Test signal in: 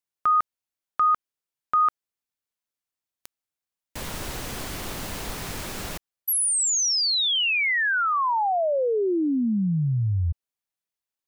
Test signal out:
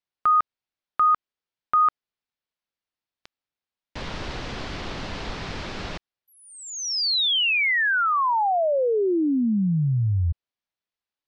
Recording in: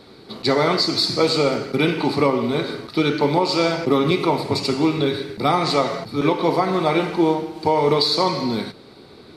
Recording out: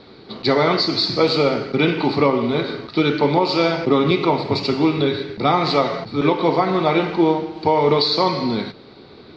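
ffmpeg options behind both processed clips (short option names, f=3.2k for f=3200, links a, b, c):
-af "lowpass=f=4.9k:w=0.5412,lowpass=f=4.9k:w=1.3066,volume=1.5dB"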